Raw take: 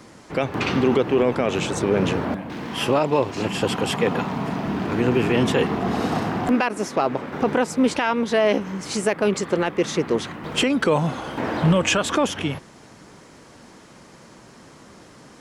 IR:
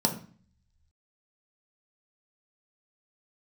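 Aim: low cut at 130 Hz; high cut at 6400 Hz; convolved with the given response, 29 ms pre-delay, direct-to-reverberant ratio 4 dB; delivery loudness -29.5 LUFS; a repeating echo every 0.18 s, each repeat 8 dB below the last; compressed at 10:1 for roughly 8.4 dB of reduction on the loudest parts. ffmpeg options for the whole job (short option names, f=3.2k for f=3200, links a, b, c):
-filter_complex "[0:a]highpass=130,lowpass=6.4k,acompressor=threshold=-23dB:ratio=10,aecho=1:1:180|360|540|720|900:0.398|0.159|0.0637|0.0255|0.0102,asplit=2[a][b];[1:a]atrim=start_sample=2205,adelay=29[c];[b][c]afir=irnorm=-1:irlink=0,volume=-13.5dB[d];[a][d]amix=inputs=2:normalize=0,volume=-6dB"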